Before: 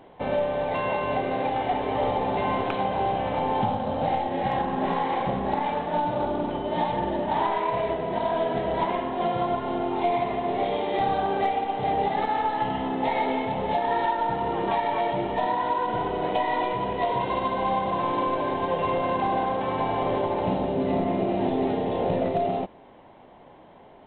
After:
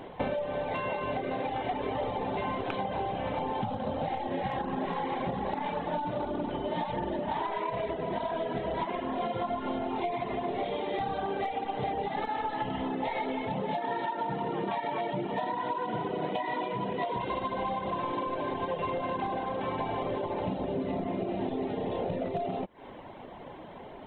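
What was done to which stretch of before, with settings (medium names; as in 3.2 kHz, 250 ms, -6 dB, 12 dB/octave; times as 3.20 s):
4.59–5.12 s: echo throw 390 ms, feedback 50%, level -7 dB
9.06–10.00 s: doubling 27 ms -5 dB
13.50–17.17 s: resonant high-pass 150 Hz, resonance Q 1.6
whole clip: peaking EQ 770 Hz -2.5 dB; compression, threshold -36 dBFS; reverb removal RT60 0.59 s; trim +7.5 dB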